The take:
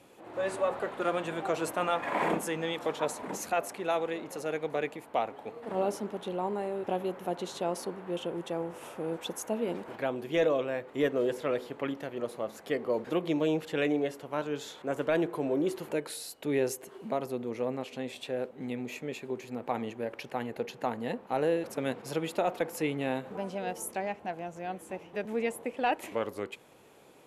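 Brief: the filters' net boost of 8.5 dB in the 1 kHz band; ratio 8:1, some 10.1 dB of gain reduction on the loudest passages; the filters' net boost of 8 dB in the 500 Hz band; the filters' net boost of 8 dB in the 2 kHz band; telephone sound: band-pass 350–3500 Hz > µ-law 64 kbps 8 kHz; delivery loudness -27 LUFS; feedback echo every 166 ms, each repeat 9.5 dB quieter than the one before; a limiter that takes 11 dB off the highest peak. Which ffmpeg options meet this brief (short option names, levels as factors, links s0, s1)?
-af "equalizer=f=500:t=o:g=8.5,equalizer=f=1000:t=o:g=6.5,equalizer=f=2000:t=o:g=8,acompressor=threshold=0.0631:ratio=8,alimiter=limit=0.075:level=0:latency=1,highpass=350,lowpass=3500,aecho=1:1:166|332|498|664:0.335|0.111|0.0365|0.012,volume=2.24" -ar 8000 -c:a pcm_mulaw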